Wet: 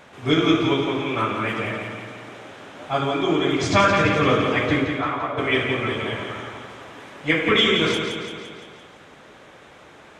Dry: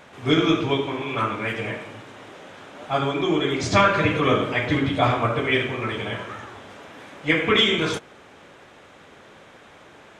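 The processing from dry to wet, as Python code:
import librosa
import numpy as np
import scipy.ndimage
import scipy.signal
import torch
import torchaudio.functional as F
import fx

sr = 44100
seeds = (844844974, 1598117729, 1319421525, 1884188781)

p1 = fx.bandpass_q(x, sr, hz=fx.line((4.84, 2400.0), (5.37, 640.0)), q=2.2, at=(4.84, 5.37), fade=0.02)
y = p1 + fx.echo_feedback(p1, sr, ms=171, feedback_pct=57, wet_db=-6.0, dry=0)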